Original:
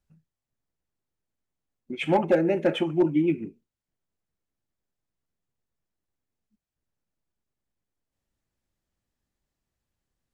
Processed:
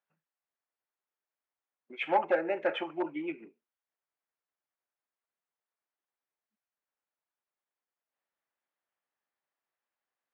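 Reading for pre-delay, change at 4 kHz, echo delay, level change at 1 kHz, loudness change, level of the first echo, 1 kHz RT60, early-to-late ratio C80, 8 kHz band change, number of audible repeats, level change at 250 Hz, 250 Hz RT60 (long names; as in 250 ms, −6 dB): no reverb audible, −6.5 dB, no echo audible, −1.0 dB, −7.5 dB, no echo audible, no reverb audible, no reverb audible, can't be measured, no echo audible, −13.5 dB, no reverb audible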